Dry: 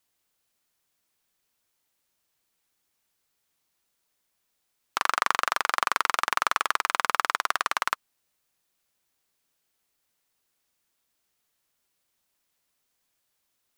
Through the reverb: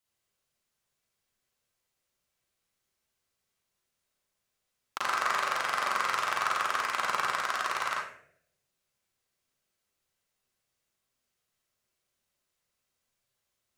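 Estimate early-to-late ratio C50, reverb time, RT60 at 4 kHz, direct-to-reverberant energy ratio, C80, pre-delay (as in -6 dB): 0.5 dB, 0.65 s, 0.40 s, -4.5 dB, 5.5 dB, 36 ms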